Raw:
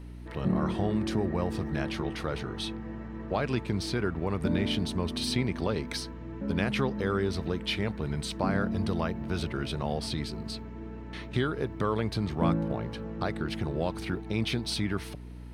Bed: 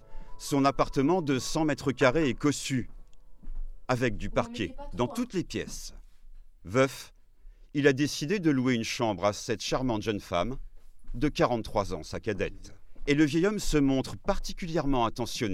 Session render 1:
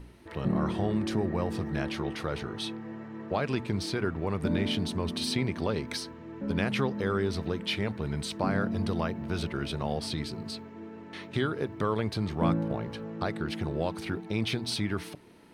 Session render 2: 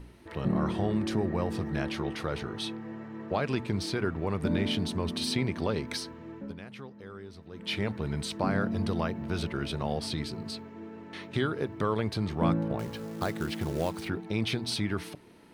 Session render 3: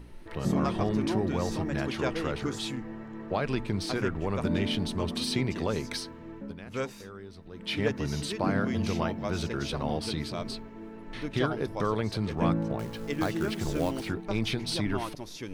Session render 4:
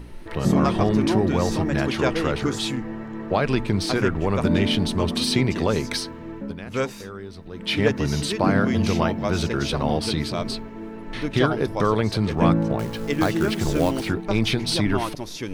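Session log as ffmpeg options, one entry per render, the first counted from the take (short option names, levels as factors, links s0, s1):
-af "bandreject=f=60:t=h:w=4,bandreject=f=120:t=h:w=4,bandreject=f=180:t=h:w=4,bandreject=f=240:t=h:w=4,bandreject=f=300:t=h:w=4"
-filter_complex "[0:a]asettb=1/sr,asplit=3[s0][s1][s2];[s0]atrim=end=12.794[s3];[s1]atrim=start=12.79:end=14.08,asetpts=PTS-STARTPTS,afade=t=in:d=0.004:c=qsin,afade=t=out:st=1.286:d=0.004:c=qsin,acrusher=bits=4:mode=log:mix=0:aa=0.000001[s4];[s2]atrim=start=14.076[s5];[s3][s4]acrossfade=d=0.004:c1=hsin:c2=qsin[s6];[s6][s5]acrossfade=d=0.004:c1=qsin:c2=hsin,asplit=3[s7][s8][s9];[s7]atrim=end=6.56,asetpts=PTS-STARTPTS,afade=t=out:st=6.3:d=0.26:silence=0.158489[s10];[s8]atrim=start=6.56:end=7.51,asetpts=PTS-STARTPTS,volume=0.158[s11];[s9]atrim=start=7.51,asetpts=PTS-STARTPTS,afade=t=in:d=0.26:silence=0.158489[s12];[s10][s11][s12]concat=n=3:v=0:a=1"
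-filter_complex "[1:a]volume=0.355[s0];[0:a][s0]amix=inputs=2:normalize=0"
-af "volume=2.51"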